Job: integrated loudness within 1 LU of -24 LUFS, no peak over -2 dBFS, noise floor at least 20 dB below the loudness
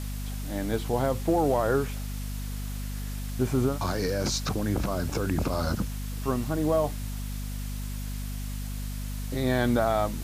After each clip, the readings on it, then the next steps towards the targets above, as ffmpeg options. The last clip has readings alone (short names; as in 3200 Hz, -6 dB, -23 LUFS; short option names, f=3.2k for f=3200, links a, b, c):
hum 50 Hz; harmonics up to 250 Hz; hum level -31 dBFS; noise floor -34 dBFS; noise floor target -49 dBFS; loudness -29.0 LUFS; peak -12.0 dBFS; loudness target -24.0 LUFS
-> -af "bandreject=f=50:t=h:w=4,bandreject=f=100:t=h:w=4,bandreject=f=150:t=h:w=4,bandreject=f=200:t=h:w=4,bandreject=f=250:t=h:w=4"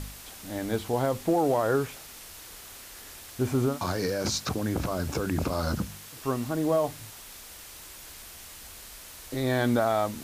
hum none; noise floor -46 dBFS; noise floor target -49 dBFS
-> -af "afftdn=nr=6:nf=-46"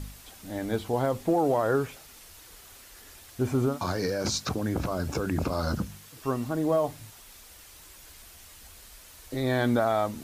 noise floor -50 dBFS; loudness -28.5 LUFS; peak -13.5 dBFS; loudness target -24.0 LUFS
-> -af "volume=4.5dB"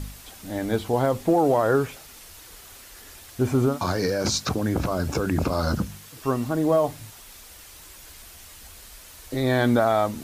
loudness -24.0 LUFS; peak -9.0 dBFS; noise floor -46 dBFS